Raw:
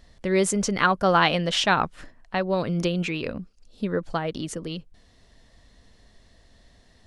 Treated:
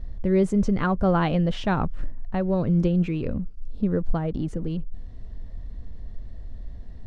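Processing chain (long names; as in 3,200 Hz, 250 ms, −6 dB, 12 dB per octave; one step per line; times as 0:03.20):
mu-law and A-law mismatch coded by mu
spectral tilt −4.5 dB per octave
level −6.5 dB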